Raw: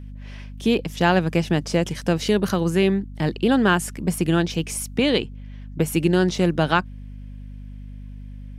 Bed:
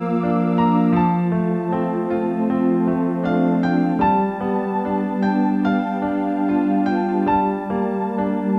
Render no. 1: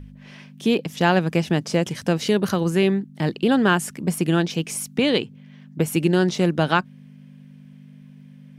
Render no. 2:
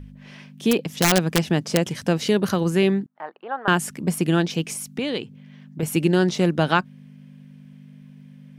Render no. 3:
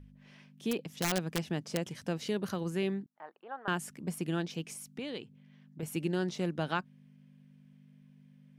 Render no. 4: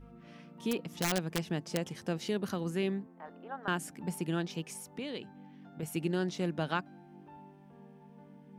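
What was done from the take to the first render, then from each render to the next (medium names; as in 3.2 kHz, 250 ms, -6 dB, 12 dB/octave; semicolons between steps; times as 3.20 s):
de-hum 50 Hz, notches 2
0.71–1.96 s: integer overflow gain 9.5 dB; 3.06–3.68 s: Butterworth band-pass 1 kHz, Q 1.3; 4.73–5.83 s: compression 1.5:1, threshold -33 dBFS
trim -13.5 dB
add bed -35.5 dB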